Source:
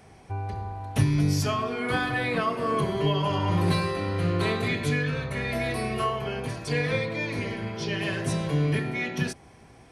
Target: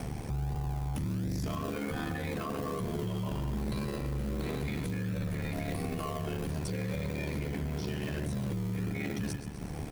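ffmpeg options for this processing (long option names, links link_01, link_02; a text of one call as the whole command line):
ffmpeg -i in.wav -filter_complex "[0:a]lowshelf=frequency=490:gain=8,aecho=1:1:128|256|384:0.178|0.0605|0.0206,acompressor=mode=upward:threshold=-26dB:ratio=2.5,lowshelf=frequency=85:gain=9,asplit=2[link_01][link_02];[link_02]acrusher=samples=32:mix=1:aa=0.000001:lfo=1:lforange=19.2:lforate=1.3,volume=-8.5dB[link_03];[link_01][link_03]amix=inputs=2:normalize=0,acontrast=56,highpass=frequency=65:width=0.5412,highpass=frequency=65:width=1.3066,aeval=exprs='val(0)*sin(2*PI*37*n/s)':channel_layout=same,alimiter=limit=-18dB:level=0:latency=1:release=22,crystalizer=i=1:c=0,volume=-8.5dB" out.wav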